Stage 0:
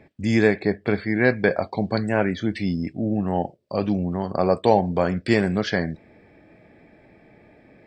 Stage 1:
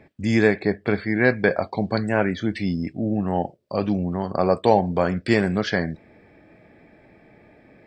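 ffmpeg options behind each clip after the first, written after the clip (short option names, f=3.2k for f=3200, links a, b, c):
-af "equalizer=f=1.3k:w=1.5:g=2"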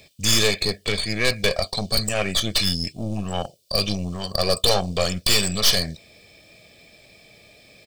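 -af "aexciter=amount=9.3:drive=9.2:freq=2.8k,aeval=exprs='(tanh(5.62*val(0)+0.75)-tanh(0.75))/5.62':c=same,aecho=1:1:1.7:0.48,volume=1dB"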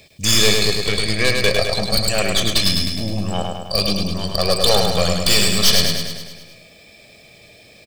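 -af "aecho=1:1:104|208|312|416|520|624|728|832:0.631|0.372|0.22|0.13|0.0765|0.0451|0.0266|0.0157,volume=2.5dB"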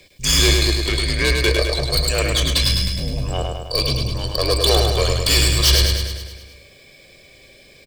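-af "afreqshift=-68,volume=-1dB"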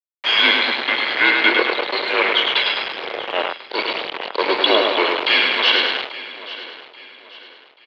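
-af "aeval=exprs='val(0)*gte(abs(val(0)),0.119)':c=same,aecho=1:1:835|1670|2505:0.15|0.0539|0.0194,highpass=f=580:t=q:w=0.5412,highpass=f=580:t=q:w=1.307,lowpass=f=3.4k:t=q:w=0.5176,lowpass=f=3.4k:t=q:w=0.7071,lowpass=f=3.4k:t=q:w=1.932,afreqshift=-110,volume=7.5dB"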